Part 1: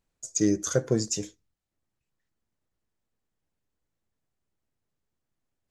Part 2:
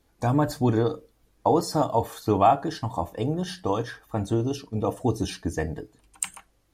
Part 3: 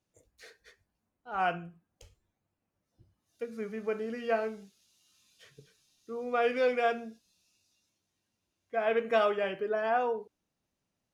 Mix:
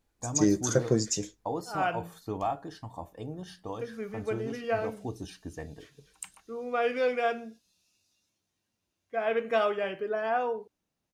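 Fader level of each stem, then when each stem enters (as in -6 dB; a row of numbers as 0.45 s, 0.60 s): -0.5 dB, -12.5 dB, 0.0 dB; 0.00 s, 0.00 s, 0.40 s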